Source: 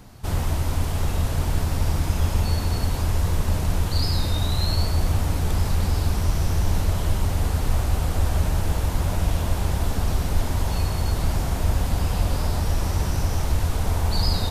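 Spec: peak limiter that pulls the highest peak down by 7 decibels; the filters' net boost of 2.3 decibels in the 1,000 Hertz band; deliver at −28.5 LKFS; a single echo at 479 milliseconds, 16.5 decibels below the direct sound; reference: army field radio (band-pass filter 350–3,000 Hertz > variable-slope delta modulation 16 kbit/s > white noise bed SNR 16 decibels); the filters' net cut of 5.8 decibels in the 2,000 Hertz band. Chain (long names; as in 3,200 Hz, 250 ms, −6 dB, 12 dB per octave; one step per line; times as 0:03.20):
parametric band 1,000 Hz +5 dB
parametric band 2,000 Hz −9 dB
brickwall limiter −15 dBFS
band-pass filter 350–3,000 Hz
single-tap delay 479 ms −16.5 dB
variable-slope delta modulation 16 kbit/s
white noise bed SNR 16 dB
level +7 dB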